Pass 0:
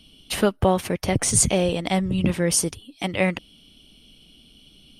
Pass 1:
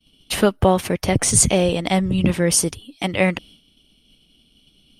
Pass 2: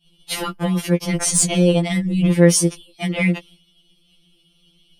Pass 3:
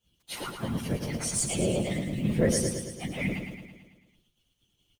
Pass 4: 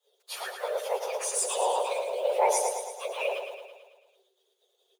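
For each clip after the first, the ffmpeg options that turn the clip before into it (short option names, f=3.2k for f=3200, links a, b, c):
-af "agate=range=-33dB:threshold=-44dB:ratio=3:detection=peak,volume=3.5dB"
-af "asoftclip=type=tanh:threshold=-4dB,afftfilt=real='re*2.83*eq(mod(b,8),0)':imag='im*2.83*eq(mod(b,8),0)':win_size=2048:overlap=0.75,volume=1.5dB"
-af "acrusher=bits=8:dc=4:mix=0:aa=0.000001,afftfilt=real='hypot(re,im)*cos(2*PI*random(0))':imag='hypot(re,im)*sin(2*PI*random(1))':win_size=512:overlap=0.75,aecho=1:1:110|220|330|440|550|660|770|880:0.473|0.274|0.159|0.0923|0.0535|0.0311|0.018|0.0104,volume=-6.5dB"
-af "afreqshift=370"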